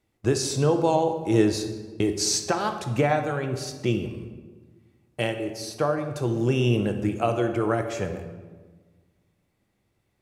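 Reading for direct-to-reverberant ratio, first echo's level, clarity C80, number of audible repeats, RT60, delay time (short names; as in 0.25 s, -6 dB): 6.0 dB, none, 10.0 dB, none, 1.4 s, none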